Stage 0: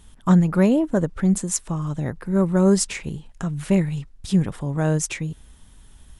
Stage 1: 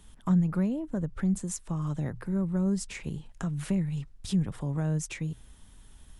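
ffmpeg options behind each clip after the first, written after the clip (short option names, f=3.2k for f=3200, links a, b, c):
-filter_complex "[0:a]bandreject=f=60:t=h:w=6,bandreject=f=120:t=h:w=6,acrossover=split=180[a][b];[b]acompressor=threshold=-30dB:ratio=6[c];[a][c]amix=inputs=2:normalize=0,volume=-4dB"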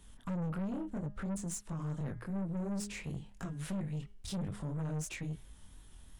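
-af "flanger=delay=20:depth=5.9:speed=2.9,bandreject=f=204.9:t=h:w=4,bandreject=f=409.8:t=h:w=4,bandreject=f=614.7:t=h:w=4,bandreject=f=819.6:t=h:w=4,bandreject=f=1.0245k:t=h:w=4,bandreject=f=1.2294k:t=h:w=4,bandreject=f=1.4343k:t=h:w=4,bandreject=f=1.6392k:t=h:w=4,bandreject=f=1.8441k:t=h:w=4,bandreject=f=2.049k:t=h:w=4,bandreject=f=2.2539k:t=h:w=4,bandreject=f=2.4588k:t=h:w=4,bandreject=f=2.6637k:t=h:w=4,bandreject=f=2.8686k:t=h:w=4,bandreject=f=3.0735k:t=h:w=4,bandreject=f=3.2784k:t=h:w=4,bandreject=f=3.4833k:t=h:w=4,aeval=exprs='(tanh(56.2*val(0)+0.25)-tanh(0.25))/56.2':c=same,volume=1dB"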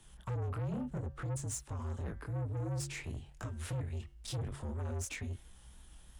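-filter_complex "[0:a]acrossover=split=130|3800[a][b][c];[a]acompressor=threshold=-52dB:ratio=6[d];[d][b][c]amix=inputs=3:normalize=0,afreqshift=-65,volume=1dB"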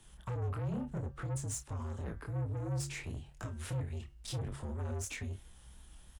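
-filter_complex "[0:a]asplit=2[a][b];[b]adelay=30,volume=-12dB[c];[a][c]amix=inputs=2:normalize=0"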